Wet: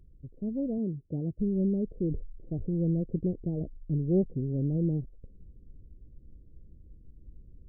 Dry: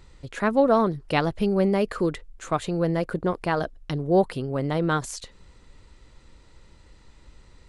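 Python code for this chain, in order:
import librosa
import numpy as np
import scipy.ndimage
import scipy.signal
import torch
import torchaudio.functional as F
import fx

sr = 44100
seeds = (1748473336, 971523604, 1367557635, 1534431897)

y = fx.highpass(x, sr, hz=76.0, slope=12, at=(0.78, 1.39))
y = fx.rider(y, sr, range_db=10, speed_s=2.0)
y = scipy.ndimage.gaussian_filter1d(y, 25.0, mode='constant')
y = fx.sustainer(y, sr, db_per_s=51.0, at=(2.08, 2.91), fade=0.02)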